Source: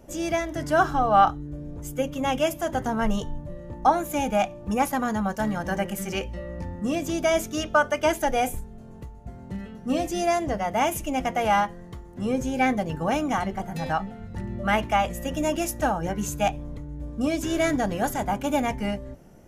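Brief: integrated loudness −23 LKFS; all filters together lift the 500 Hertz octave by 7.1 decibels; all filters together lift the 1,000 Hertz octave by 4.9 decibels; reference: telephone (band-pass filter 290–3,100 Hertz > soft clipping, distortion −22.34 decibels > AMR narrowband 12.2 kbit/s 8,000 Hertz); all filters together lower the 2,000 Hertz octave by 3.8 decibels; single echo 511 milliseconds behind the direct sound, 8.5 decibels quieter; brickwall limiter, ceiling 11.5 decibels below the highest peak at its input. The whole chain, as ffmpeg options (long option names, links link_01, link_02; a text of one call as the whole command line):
ffmpeg -i in.wav -af "equalizer=frequency=500:width_type=o:gain=9,equalizer=frequency=1000:width_type=o:gain=4,equalizer=frequency=2000:width_type=o:gain=-7,alimiter=limit=-13.5dB:level=0:latency=1,highpass=290,lowpass=3100,aecho=1:1:511:0.376,asoftclip=threshold=-13.5dB,volume=3dB" -ar 8000 -c:a libopencore_amrnb -b:a 12200 out.amr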